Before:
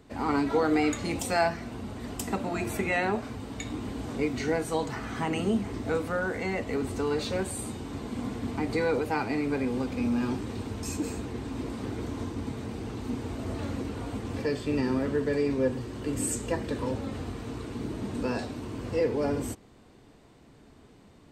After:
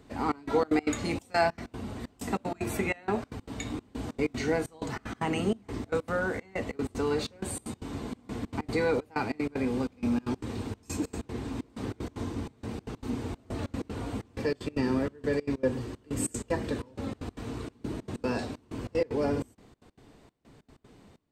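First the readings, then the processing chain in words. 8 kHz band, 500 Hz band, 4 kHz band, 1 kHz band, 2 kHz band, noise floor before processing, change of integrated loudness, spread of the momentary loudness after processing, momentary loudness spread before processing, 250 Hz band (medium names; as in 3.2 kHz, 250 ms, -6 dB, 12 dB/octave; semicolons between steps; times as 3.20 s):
-3.0 dB, -1.5 dB, -2.0 dB, -1.5 dB, -2.0 dB, -55 dBFS, -2.0 dB, 10 LU, 9 LU, -2.0 dB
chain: trance gate "xxxx..xx.x." 190 bpm -24 dB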